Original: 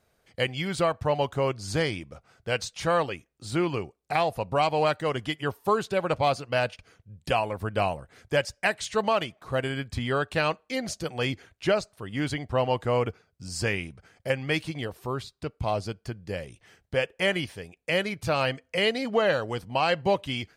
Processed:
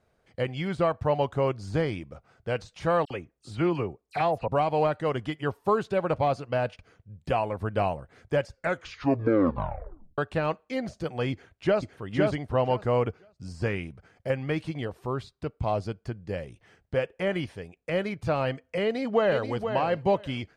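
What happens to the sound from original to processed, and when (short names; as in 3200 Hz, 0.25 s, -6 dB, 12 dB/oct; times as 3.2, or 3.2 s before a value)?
3.05–4.48 dispersion lows, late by 55 ms, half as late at 2600 Hz
8.46 tape stop 1.72 s
11.31–12.04 echo throw 0.51 s, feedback 15%, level -2 dB
18.83–19.49 echo throw 0.48 s, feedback 15%, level -8 dB
whole clip: de-esser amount 95%; LPF 11000 Hz 12 dB/oct; high shelf 2500 Hz -10 dB; gain +1 dB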